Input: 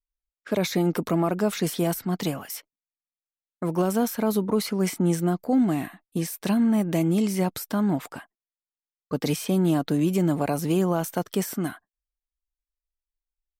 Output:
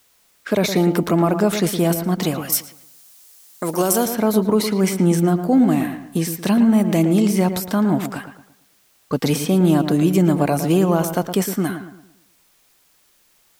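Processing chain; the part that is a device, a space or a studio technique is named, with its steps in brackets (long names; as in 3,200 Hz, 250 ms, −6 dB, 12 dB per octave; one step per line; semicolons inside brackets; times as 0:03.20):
noise-reduction cassette on a plain deck (one half of a high-frequency compander encoder only; tape wow and flutter 17 cents; white noise bed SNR 39 dB)
0:02.52–0:04.06: bass and treble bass −9 dB, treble +12 dB
feedback echo with a low-pass in the loop 113 ms, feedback 39%, low-pass 2,100 Hz, level −8.5 dB
level +6 dB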